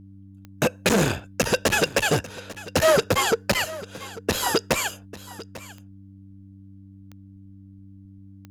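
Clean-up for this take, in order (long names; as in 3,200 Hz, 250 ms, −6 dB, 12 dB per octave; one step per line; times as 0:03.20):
click removal
hum removal 97.4 Hz, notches 3
echo removal 845 ms −17.5 dB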